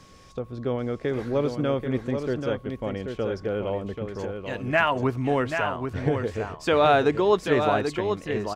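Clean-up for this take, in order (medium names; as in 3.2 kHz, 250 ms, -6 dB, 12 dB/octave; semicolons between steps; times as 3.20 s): band-stop 1.1 kHz, Q 30; inverse comb 785 ms -6.5 dB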